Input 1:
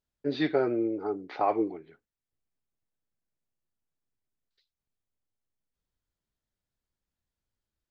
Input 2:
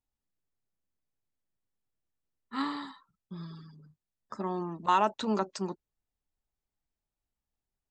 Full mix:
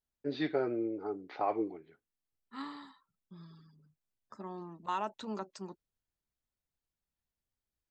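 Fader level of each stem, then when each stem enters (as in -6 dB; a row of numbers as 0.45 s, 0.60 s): -6.0 dB, -10.0 dB; 0.00 s, 0.00 s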